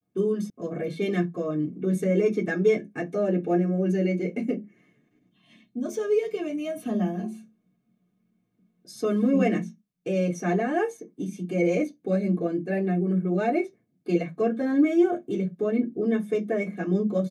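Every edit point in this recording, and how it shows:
0.5 sound cut off

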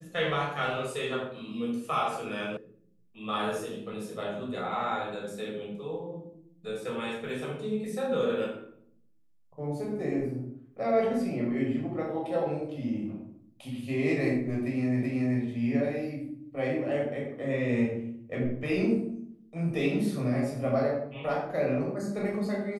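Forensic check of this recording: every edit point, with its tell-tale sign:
2.57 sound cut off
15.03 repeat of the last 0.38 s

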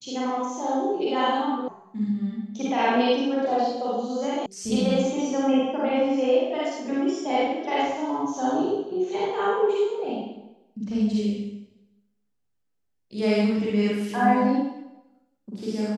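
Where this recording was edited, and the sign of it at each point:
1.68 sound cut off
4.46 sound cut off

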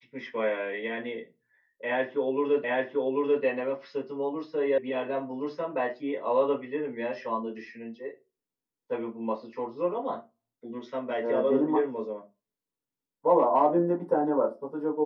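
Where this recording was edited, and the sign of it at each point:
2.64 repeat of the last 0.79 s
4.78 sound cut off

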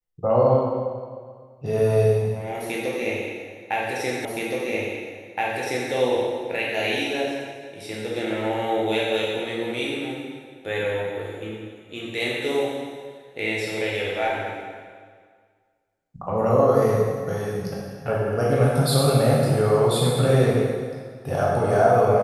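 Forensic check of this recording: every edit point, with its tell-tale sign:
4.25 repeat of the last 1.67 s

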